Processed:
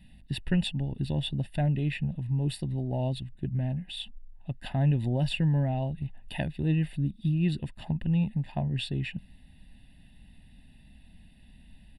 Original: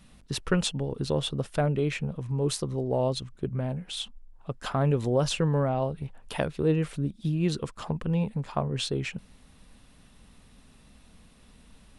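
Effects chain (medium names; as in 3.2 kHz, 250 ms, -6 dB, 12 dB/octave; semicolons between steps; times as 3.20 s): treble shelf 6 kHz -5.5 dB; static phaser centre 2.7 kHz, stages 4; comb 1.1 ms, depth 78%; trim -2 dB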